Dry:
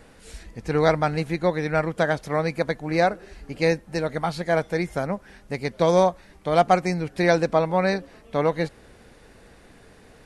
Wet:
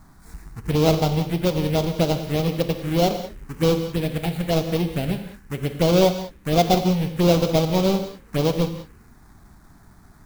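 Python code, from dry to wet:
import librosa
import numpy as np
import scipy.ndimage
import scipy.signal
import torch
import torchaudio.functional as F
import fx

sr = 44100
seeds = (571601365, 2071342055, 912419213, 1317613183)

p1 = fx.halfwave_hold(x, sr)
p2 = fx.env_phaser(p1, sr, low_hz=470.0, high_hz=1800.0, full_db=-14.0)
p3 = fx.rev_gated(p2, sr, seeds[0], gate_ms=220, shape='flat', drr_db=7.5)
p4 = fx.sample_hold(p3, sr, seeds[1], rate_hz=2800.0, jitter_pct=0)
p5 = p3 + (p4 * 10.0 ** (-10.5 / 20.0))
y = p5 * 10.0 ** (-4.5 / 20.0)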